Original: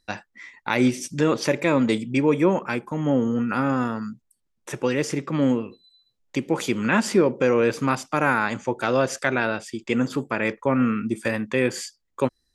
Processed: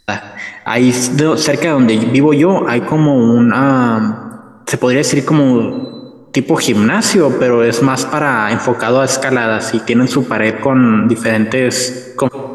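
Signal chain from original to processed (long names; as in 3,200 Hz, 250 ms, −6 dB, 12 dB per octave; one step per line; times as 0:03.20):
notch filter 2,400 Hz, Q 20
dense smooth reverb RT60 1.5 s, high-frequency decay 0.4×, pre-delay 105 ms, DRR 15.5 dB
boost into a limiter +17.5 dB
level −1 dB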